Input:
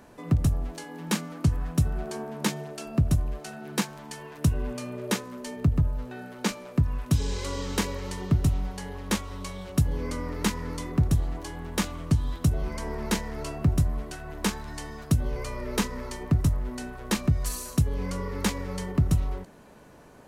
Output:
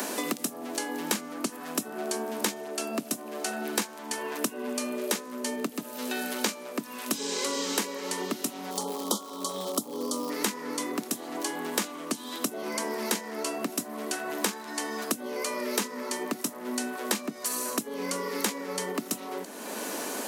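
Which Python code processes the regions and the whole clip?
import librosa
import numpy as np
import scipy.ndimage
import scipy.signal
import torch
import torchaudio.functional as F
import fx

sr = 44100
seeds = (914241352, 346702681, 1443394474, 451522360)

y = fx.brickwall_bandstop(x, sr, low_hz=1400.0, high_hz=3000.0, at=(8.7, 10.29), fade=0.02)
y = fx.dmg_crackle(y, sr, seeds[0], per_s=250.0, level_db=-40.0, at=(8.7, 10.29), fade=0.02)
y = scipy.signal.sosfilt(scipy.signal.butter(8, 220.0, 'highpass', fs=sr, output='sos'), y)
y = fx.high_shelf(y, sr, hz=5100.0, db=9.5)
y = fx.band_squash(y, sr, depth_pct=100)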